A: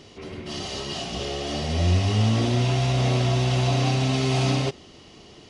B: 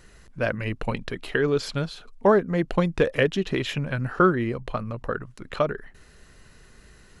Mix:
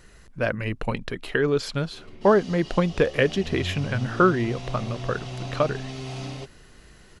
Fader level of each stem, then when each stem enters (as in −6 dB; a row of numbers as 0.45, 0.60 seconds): −12.0, +0.5 decibels; 1.75, 0.00 seconds